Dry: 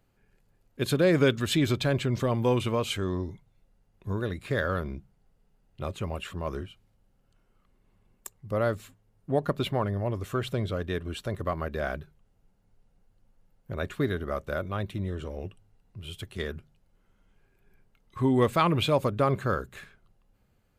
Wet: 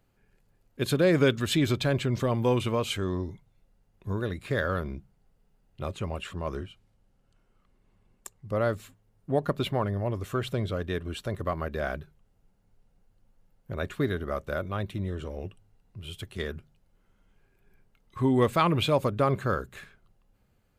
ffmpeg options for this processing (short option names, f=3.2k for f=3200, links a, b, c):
-filter_complex "[0:a]asettb=1/sr,asplit=3[a][b][c];[a]atrim=end=5.944[d];[b]atrim=start=5.94:end=8.7,asetpts=PTS-STARTPTS,afade=t=in:d=0.004:c=qsin,afade=t=out:st=2.756:d=0.004:c=qsin,lowpass=11k[e];[c]atrim=start=8.696[f];[d][e]acrossfade=d=0.004:c1=hsin:c2=qsin[g];[g][f]acrossfade=d=0.004:c1=qsin:c2=hsin"